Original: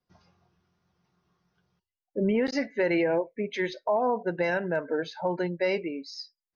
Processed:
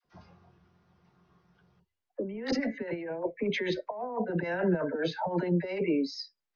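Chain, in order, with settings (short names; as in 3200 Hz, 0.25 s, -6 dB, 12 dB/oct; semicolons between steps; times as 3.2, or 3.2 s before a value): high shelf 4000 Hz -7.5 dB; negative-ratio compressor -31 dBFS, ratio -0.5; air absorption 68 m; dispersion lows, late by 47 ms, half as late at 650 Hz; gain +2.5 dB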